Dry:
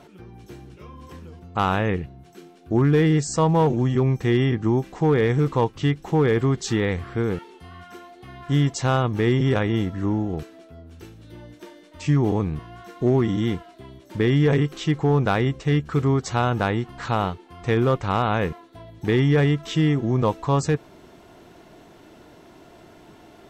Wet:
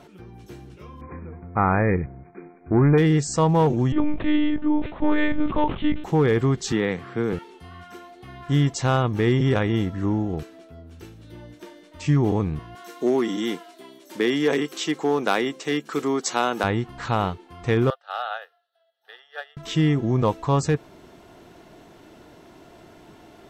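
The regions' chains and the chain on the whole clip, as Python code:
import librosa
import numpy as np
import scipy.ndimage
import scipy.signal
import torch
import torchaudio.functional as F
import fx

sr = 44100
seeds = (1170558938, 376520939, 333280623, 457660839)

y = fx.chain(x, sr, fx.leveller(passes=1),
    fx.brickwall_lowpass(high_hz=2500.0), at=(1.01, 2.98))
y = fx.chain(y, sr, fx.lpc_monotone(seeds[0], pitch_hz=300.0, order=10),
    fx.sustainer(db_per_s=120.0), at=(3.92, 6.04))
y = fx.chain(y, sr, fx.highpass(hz=130.0, slope=24),
    fx.high_shelf(hz=7100.0, db=-6.0), at=(6.72, 7.33))
y = fx.chain(y, sr, fx.highpass(hz=240.0, slope=24),
    fx.high_shelf(hz=4300.0, db=10.5), at=(12.75, 16.64))
y = fx.chain(y, sr, fx.highpass(hz=690.0, slope=24),
    fx.fixed_phaser(hz=1500.0, stages=8),
    fx.upward_expand(threshold_db=-38.0, expansion=2.5), at=(17.9, 19.57))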